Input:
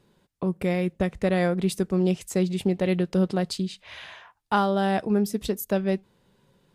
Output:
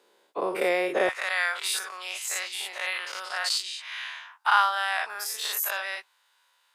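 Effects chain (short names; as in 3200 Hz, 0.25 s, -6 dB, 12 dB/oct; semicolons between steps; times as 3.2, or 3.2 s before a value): spectral dilation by 0.12 s; HPF 400 Hz 24 dB/oct, from 1.09 s 1000 Hz; dynamic EQ 1500 Hz, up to +4 dB, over -39 dBFS, Q 0.83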